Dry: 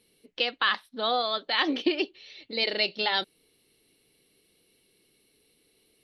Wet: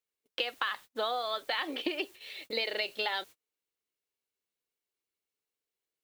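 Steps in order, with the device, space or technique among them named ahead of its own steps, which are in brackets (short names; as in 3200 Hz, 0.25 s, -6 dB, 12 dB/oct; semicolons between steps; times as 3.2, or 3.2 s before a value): baby monitor (BPF 430–3400 Hz; compressor 12:1, threshold -35 dBFS, peak gain reduction 15 dB; white noise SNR 22 dB; gate -53 dBFS, range -33 dB); gain +6 dB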